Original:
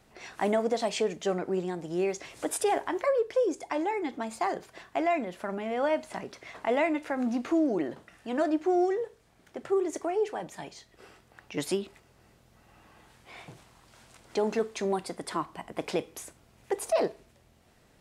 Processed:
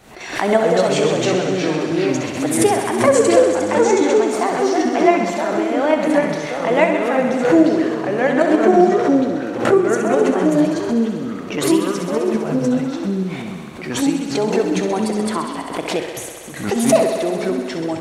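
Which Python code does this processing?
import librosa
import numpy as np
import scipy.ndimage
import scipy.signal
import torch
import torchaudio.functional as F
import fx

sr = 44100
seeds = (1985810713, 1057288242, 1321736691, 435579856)

p1 = fx.low_shelf(x, sr, hz=110.0, db=-5.0)
p2 = fx.level_steps(p1, sr, step_db=24)
p3 = p1 + F.gain(torch.from_numpy(p2), 1.0).numpy()
p4 = fx.echo_pitch(p3, sr, ms=135, semitones=-3, count=3, db_per_echo=-3.0)
p5 = fx.notch(p4, sr, hz=5000.0, q=12.0)
p6 = p5 + fx.echo_thinned(p5, sr, ms=65, feedback_pct=83, hz=180.0, wet_db=-8.0, dry=0)
p7 = fx.pre_swell(p6, sr, db_per_s=91.0)
y = F.gain(torch.from_numpy(p7), 7.0).numpy()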